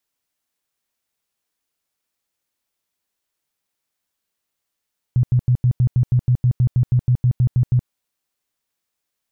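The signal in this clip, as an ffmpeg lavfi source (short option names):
-f lavfi -i "aevalsrc='0.266*sin(2*PI*124*mod(t,0.16))*lt(mod(t,0.16),9/124)':d=2.72:s=44100"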